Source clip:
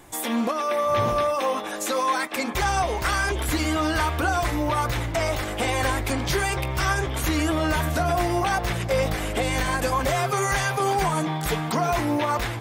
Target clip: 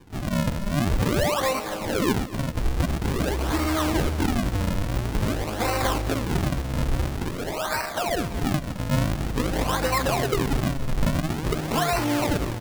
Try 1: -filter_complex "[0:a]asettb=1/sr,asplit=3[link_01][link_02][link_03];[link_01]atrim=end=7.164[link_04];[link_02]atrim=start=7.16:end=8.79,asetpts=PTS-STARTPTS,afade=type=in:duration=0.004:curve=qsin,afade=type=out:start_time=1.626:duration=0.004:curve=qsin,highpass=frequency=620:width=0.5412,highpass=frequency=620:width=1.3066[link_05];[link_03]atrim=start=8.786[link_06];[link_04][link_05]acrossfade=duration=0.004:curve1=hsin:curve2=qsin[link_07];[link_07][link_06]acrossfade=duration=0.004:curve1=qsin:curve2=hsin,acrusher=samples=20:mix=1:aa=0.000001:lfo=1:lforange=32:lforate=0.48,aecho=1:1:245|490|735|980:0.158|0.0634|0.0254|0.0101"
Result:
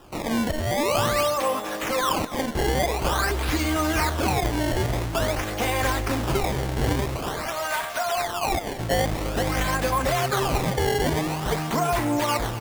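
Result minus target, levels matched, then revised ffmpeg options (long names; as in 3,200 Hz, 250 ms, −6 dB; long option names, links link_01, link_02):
sample-and-hold swept by an LFO: distortion −7 dB
-filter_complex "[0:a]asettb=1/sr,asplit=3[link_01][link_02][link_03];[link_01]atrim=end=7.164[link_04];[link_02]atrim=start=7.16:end=8.79,asetpts=PTS-STARTPTS,afade=type=in:duration=0.004:curve=qsin,afade=type=out:start_time=1.626:duration=0.004:curve=qsin,highpass=frequency=620:width=0.5412,highpass=frequency=620:width=1.3066[link_05];[link_03]atrim=start=8.786[link_06];[link_04][link_05]acrossfade=duration=0.004:curve1=hsin:curve2=qsin[link_07];[link_07][link_06]acrossfade=duration=0.004:curve1=qsin:curve2=hsin,acrusher=samples=64:mix=1:aa=0.000001:lfo=1:lforange=102:lforate=0.48,aecho=1:1:245|490|735|980:0.158|0.0634|0.0254|0.0101"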